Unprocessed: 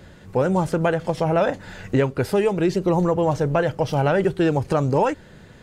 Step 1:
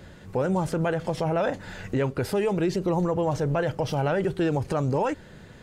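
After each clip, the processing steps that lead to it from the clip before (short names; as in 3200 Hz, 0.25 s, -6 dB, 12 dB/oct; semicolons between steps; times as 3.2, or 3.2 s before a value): limiter -16 dBFS, peak gain reduction 7 dB; gain -1 dB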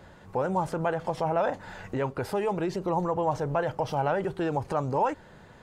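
bell 910 Hz +10 dB 1.3 oct; gain -6.5 dB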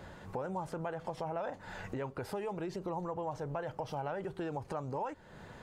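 compressor 2.5:1, threshold -42 dBFS, peak gain reduction 14 dB; gain +1 dB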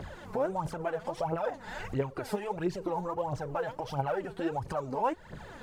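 phaser 1.5 Hz, delay 4.9 ms, feedback 69%; gain +2.5 dB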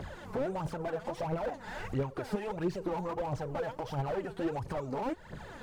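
slew limiter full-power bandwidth 17 Hz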